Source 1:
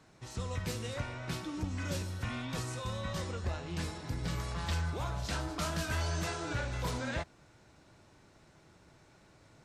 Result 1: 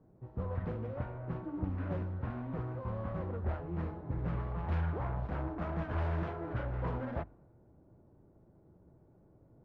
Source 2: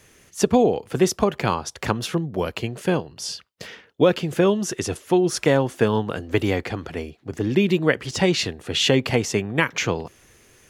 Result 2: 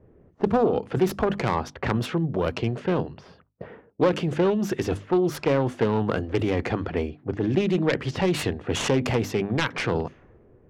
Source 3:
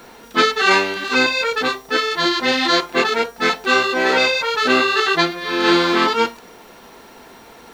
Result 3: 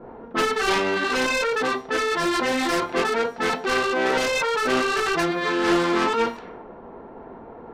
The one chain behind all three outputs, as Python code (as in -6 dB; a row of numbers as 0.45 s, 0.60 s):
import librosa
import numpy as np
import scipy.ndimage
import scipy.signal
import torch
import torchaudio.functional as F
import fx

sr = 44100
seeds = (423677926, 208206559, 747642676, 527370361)

p1 = fx.self_delay(x, sr, depth_ms=0.27)
p2 = fx.lowpass(p1, sr, hz=1700.0, slope=6)
p3 = fx.hum_notches(p2, sr, base_hz=50, count=6)
p4 = fx.over_compress(p3, sr, threshold_db=-27.0, ratio=-0.5)
p5 = p3 + (p4 * librosa.db_to_amplitude(-2.5))
p6 = fx.env_lowpass(p5, sr, base_hz=480.0, full_db=-18.0)
y = p6 * librosa.db_to_amplitude(-3.0)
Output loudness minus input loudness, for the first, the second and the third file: -1.0 LU, -3.0 LU, -5.5 LU